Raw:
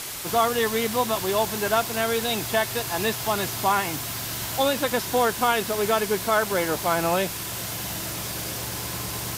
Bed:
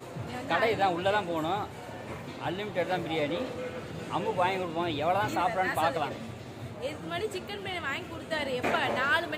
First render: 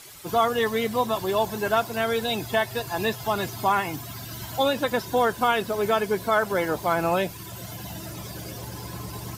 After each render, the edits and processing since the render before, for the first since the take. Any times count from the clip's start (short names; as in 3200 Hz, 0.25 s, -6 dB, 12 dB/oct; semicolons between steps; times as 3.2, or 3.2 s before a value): denoiser 13 dB, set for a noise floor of -32 dBFS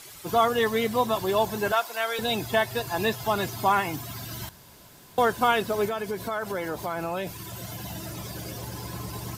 1.72–2.19 HPF 700 Hz; 4.49–5.18 room tone; 5.85–7.27 compressor 3:1, threshold -28 dBFS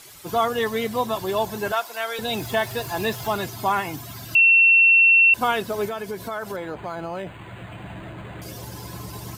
2.33–3.37 zero-crossing step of -36.5 dBFS; 4.35–5.34 bleep 2710 Hz -11 dBFS; 6.56–8.42 decimation joined by straight lines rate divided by 8×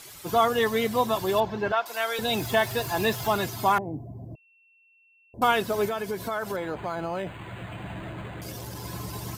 1.4–1.86 air absorption 220 m; 3.78–5.42 inverse Chebyshev low-pass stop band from 1300 Hz; 8.28–8.85 core saturation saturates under 270 Hz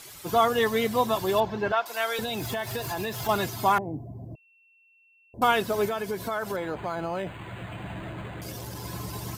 2.22–3.29 compressor, threshold -27 dBFS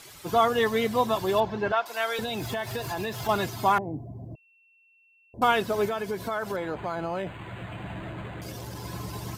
high shelf 8000 Hz -6.5 dB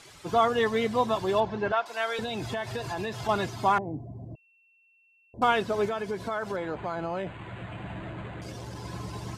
Chebyshev low-pass 8400 Hz, order 2; high shelf 4700 Hz -5.5 dB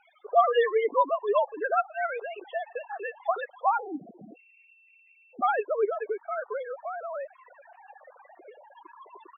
sine-wave speech; loudest bins only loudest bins 16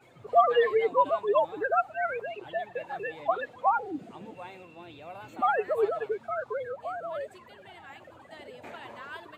add bed -16.5 dB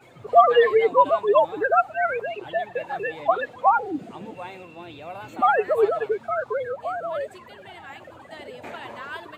gain +6.5 dB